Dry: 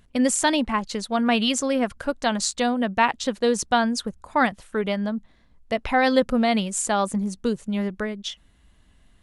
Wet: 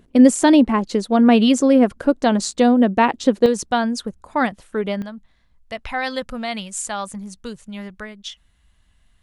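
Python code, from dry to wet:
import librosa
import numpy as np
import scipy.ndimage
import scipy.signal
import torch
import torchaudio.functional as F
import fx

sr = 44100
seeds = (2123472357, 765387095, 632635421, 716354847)

y = fx.peak_eq(x, sr, hz=330.0, db=fx.steps((0.0, 13.5), (3.46, 4.0), (5.02, -9.5)), octaves=2.0)
y = y * librosa.db_to_amplitude(-1.0)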